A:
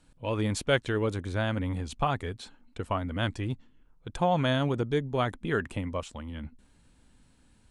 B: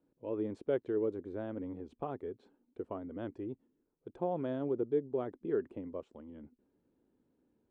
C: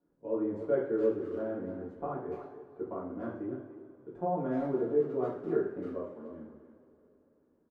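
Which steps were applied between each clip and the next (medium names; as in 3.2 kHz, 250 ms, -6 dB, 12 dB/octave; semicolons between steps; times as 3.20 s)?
band-pass filter 380 Hz, Q 2.8
resonant high shelf 2.2 kHz -11 dB, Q 1.5; speakerphone echo 290 ms, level -10 dB; two-slope reverb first 0.52 s, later 3 s, from -18 dB, DRR -7.5 dB; trim -6 dB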